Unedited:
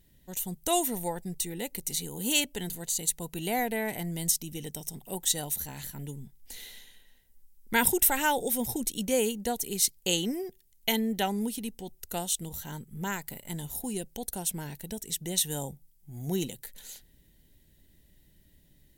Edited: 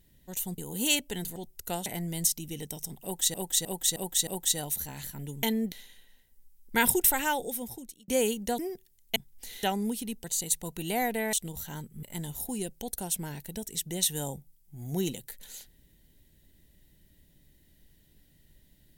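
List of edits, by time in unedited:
0:00.58–0:02.03: remove
0:02.81–0:03.90: swap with 0:11.80–0:12.30
0:05.07–0:05.38: repeat, 5 plays
0:06.23–0:06.70: swap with 0:10.90–0:11.19
0:08.03–0:09.06: fade out
0:09.57–0:10.33: remove
0:13.00–0:13.38: remove

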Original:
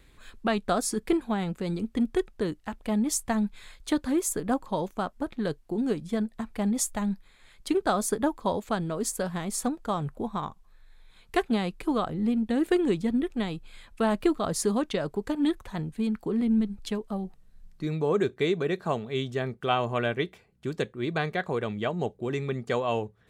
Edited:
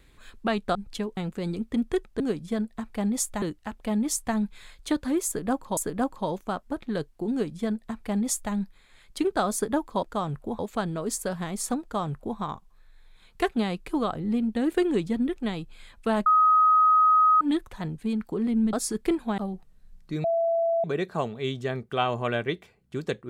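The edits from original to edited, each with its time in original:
0:00.75–0:01.40: swap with 0:16.67–0:17.09
0:04.27–0:04.78: repeat, 2 plays
0:05.81–0:07.03: duplicate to 0:02.43
0:09.76–0:10.32: duplicate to 0:08.53
0:14.20–0:15.35: beep over 1,260 Hz −15.5 dBFS
0:17.95–0:18.55: beep over 668 Hz −21 dBFS

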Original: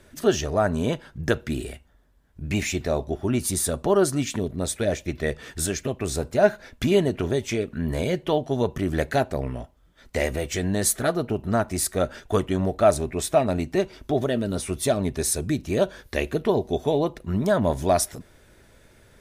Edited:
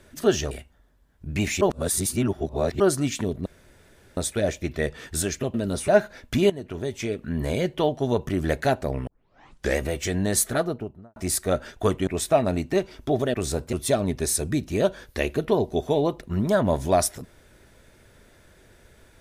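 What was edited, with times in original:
0:00.51–0:01.66: remove
0:02.76–0:03.95: reverse
0:04.61: splice in room tone 0.71 s
0:05.98–0:06.37: swap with 0:14.36–0:14.70
0:06.99–0:08.18: fade in equal-power, from −15.5 dB
0:09.56: tape start 0.71 s
0:10.97–0:11.65: fade out and dull
0:12.56–0:13.09: remove

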